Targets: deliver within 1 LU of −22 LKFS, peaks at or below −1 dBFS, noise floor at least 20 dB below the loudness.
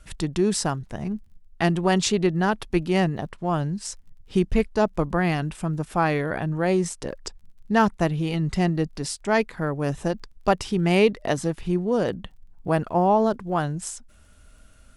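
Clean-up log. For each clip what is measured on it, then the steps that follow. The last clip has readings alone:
crackle rate 26 per second; integrated loudness −24.5 LKFS; sample peak −6.5 dBFS; target loudness −22.0 LKFS
→ click removal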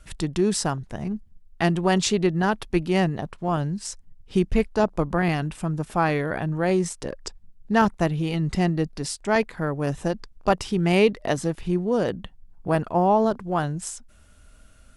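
crackle rate 0 per second; integrated loudness −24.5 LKFS; sample peak −6.5 dBFS; target loudness −22.0 LKFS
→ level +2.5 dB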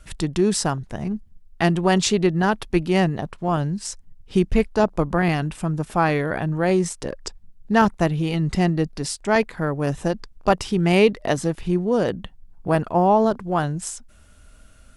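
integrated loudness −22.0 LKFS; sample peak −4.0 dBFS; background noise floor −50 dBFS

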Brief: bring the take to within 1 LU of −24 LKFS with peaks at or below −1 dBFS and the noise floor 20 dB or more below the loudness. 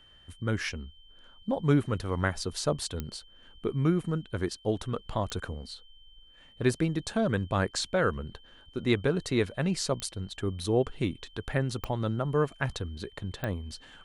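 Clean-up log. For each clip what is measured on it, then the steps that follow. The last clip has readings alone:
number of clicks 5; interfering tone 3,100 Hz; level of the tone −56 dBFS; integrated loudness −30.5 LKFS; sample peak −10.5 dBFS; target loudness −24.0 LKFS
→ click removal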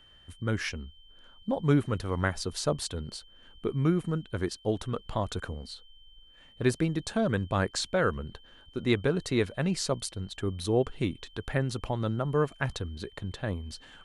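number of clicks 0; interfering tone 3,100 Hz; level of the tone −56 dBFS
→ notch filter 3,100 Hz, Q 30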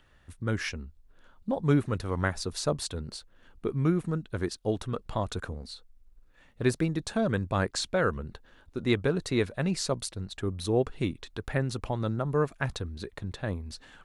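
interfering tone none found; integrated loudness −30.5 LKFS; sample peak −10.5 dBFS; target loudness −24.0 LKFS
→ level +6.5 dB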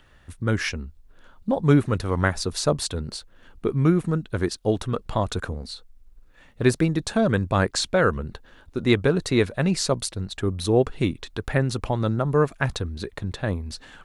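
integrated loudness −24.0 LKFS; sample peak −4.0 dBFS; background noise floor −54 dBFS

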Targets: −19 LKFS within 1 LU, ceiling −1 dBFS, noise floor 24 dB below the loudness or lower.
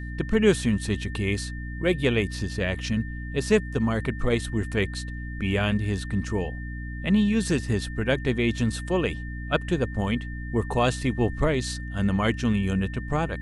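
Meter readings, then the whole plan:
mains hum 60 Hz; hum harmonics up to 300 Hz; level of the hum −32 dBFS; interfering tone 1,800 Hz; level of the tone −41 dBFS; integrated loudness −26.0 LKFS; sample peak −7.0 dBFS; target loudness −19.0 LKFS
→ hum removal 60 Hz, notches 5
notch filter 1,800 Hz, Q 30
level +7 dB
brickwall limiter −1 dBFS

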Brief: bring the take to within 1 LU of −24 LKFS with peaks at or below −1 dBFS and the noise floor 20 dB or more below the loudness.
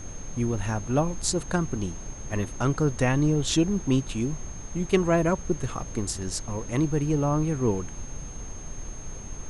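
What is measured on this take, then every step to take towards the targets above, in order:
interfering tone 6,400 Hz; level of the tone −43 dBFS; background noise floor −40 dBFS; target noise floor −47 dBFS; integrated loudness −27.0 LKFS; sample peak −8.0 dBFS; target loudness −24.0 LKFS
→ notch filter 6,400 Hz, Q 30
noise reduction from a noise print 7 dB
level +3 dB

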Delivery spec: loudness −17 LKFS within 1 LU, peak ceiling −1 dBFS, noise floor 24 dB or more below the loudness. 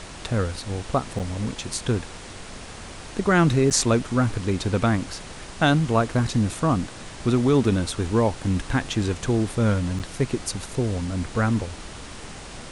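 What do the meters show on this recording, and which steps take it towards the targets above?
number of dropouts 3; longest dropout 8.0 ms; background noise floor −39 dBFS; target noise floor −48 dBFS; integrated loudness −23.5 LKFS; sample peak −3.5 dBFS; target loudness −17.0 LKFS
→ repair the gap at 0:01.19/0:03.70/0:09.99, 8 ms
noise reduction from a noise print 9 dB
level +6.5 dB
brickwall limiter −1 dBFS

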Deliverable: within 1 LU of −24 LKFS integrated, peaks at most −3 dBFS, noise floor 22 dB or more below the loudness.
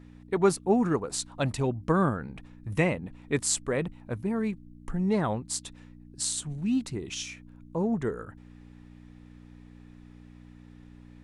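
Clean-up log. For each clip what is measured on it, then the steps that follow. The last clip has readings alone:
mains hum 60 Hz; hum harmonics up to 300 Hz; level of the hum −50 dBFS; integrated loudness −29.0 LKFS; sample peak −10.5 dBFS; target loudness −24.0 LKFS
→ hum removal 60 Hz, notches 5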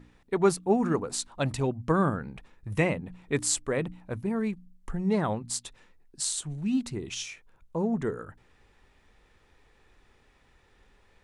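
mains hum none found; integrated loudness −29.5 LKFS; sample peak −10.5 dBFS; target loudness −24.0 LKFS
→ level +5.5 dB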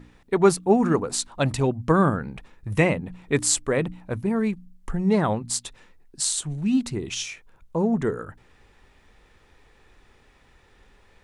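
integrated loudness −24.0 LKFS; sample peak −5.0 dBFS; background noise floor −58 dBFS

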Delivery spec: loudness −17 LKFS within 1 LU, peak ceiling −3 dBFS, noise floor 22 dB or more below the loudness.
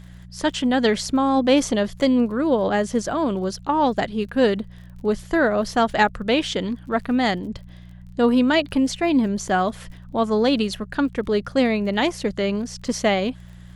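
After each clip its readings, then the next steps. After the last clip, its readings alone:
crackle rate 31 per second; mains hum 60 Hz; hum harmonics up to 180 Hz; level of the hum −39 dBFS; integrated loudness −21.5 LKFS; sample peak −5.0 dBFS; target loudness −17.0 LKFS
→ click removal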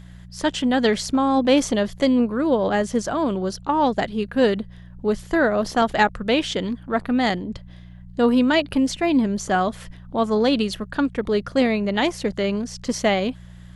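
crackle rate 0 per second; mains hum 60 Hz; hum harmonics up to 180 Hz; level of the hum −39 dBFS
→ hum removal 60 Hz, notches 3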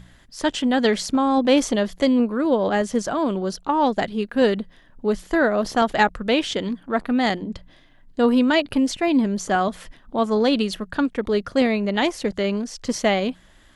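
mains hum none found; integrated loudness −21.5 LKFS; sample peak −5.0 dBFS; target loudness −17.0 LKFS
→ level +4.5 dB
brickwall limiter −3 dBFS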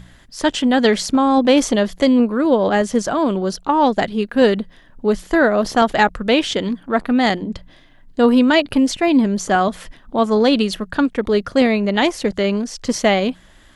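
integrated loudness −17.0 LKFS; sample peak −3.0 dBFS; background noise floor −48 dBFS

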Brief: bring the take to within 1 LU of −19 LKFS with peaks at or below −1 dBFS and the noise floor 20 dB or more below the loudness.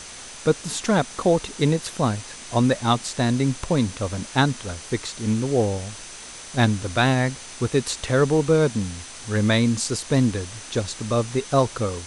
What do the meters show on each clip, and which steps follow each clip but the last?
interfering tone 6,100 Hz; level of the tone −45 dBFS; background noise floor −39 dBFS; target noise floor −43 dBFS; integrated loudness −23.0 LKFS; sample peak −4.0 dBFS; target loudness −19.0 LKFS
→ notch filter 6,100 Hz, Q 30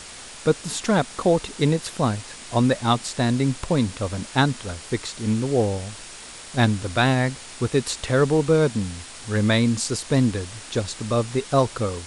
interfering tone none found; background noise floor −40 dBFS; target noise floor −43 dBFS
→ broadband denoise 6 dB, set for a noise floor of −40 dBFS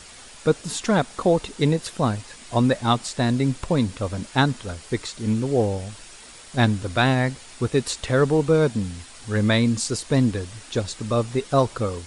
background noise floor −44 dBFS; integrated loudness −23.0 LKFS; sample peak −4.0 dBFS; target loudness −19.0 LKFS
→ level +4 dB
brickwall limiter −1 dBFS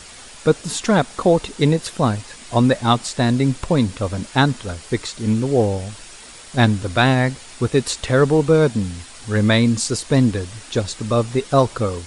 integrated loudness −19.0 LKFS; sample peak −1.0 dBFS; background noise floor −40 dBFS

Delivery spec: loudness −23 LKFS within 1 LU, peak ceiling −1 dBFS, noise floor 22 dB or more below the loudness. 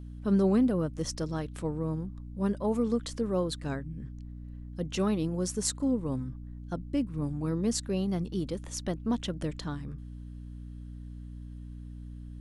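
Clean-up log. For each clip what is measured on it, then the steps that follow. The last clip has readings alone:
mains hum 60 Hz; hum harmonics up to 300 Hz; level of the hum −40 dBFS; integrated loudness −31.5 LKFS; sample peak −13.0 dBFS; target loudness −23.0 LKFS
→ hum removal 60 Hz, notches 5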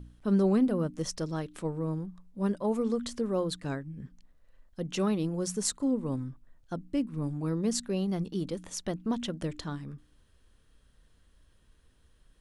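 mains hum none found; integrated loudness −31.5 LKFS; sample peak −12.5 dBFS; target loudness −23.0 LKFS
→ level +8.5 dB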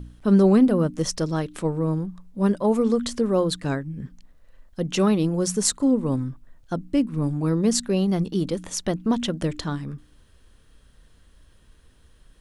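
integrated loudness −23.0 LKFS; sample peak −4.0 dBFS; background noise floor −56 dBFS

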